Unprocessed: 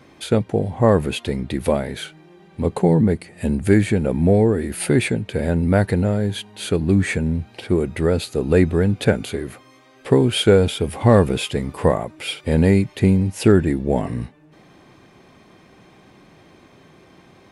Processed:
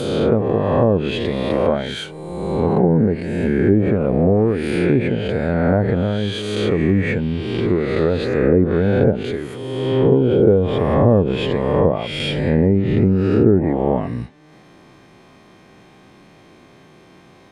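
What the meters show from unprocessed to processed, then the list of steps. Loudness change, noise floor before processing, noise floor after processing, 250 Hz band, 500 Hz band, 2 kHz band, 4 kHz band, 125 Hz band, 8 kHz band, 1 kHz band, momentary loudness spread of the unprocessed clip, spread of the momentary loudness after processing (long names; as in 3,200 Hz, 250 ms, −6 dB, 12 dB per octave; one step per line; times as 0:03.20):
+1.5 dB, −50 dBFS, −48 dBFS, +2.0 dB, +3.0 dB, 0.0 dB, −0.5 dB, +1.0 dB, below −10 dB, +2.0 dB, 10 LU, 8 LU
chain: peak hold with a rise ahead of every peak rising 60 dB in 1.69 s
parametric band 74 Hz −4.5 dB 0.38 octaves
treble cut that deepens with the level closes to 630 Hz, closed at −8 dBFS
level −1 dB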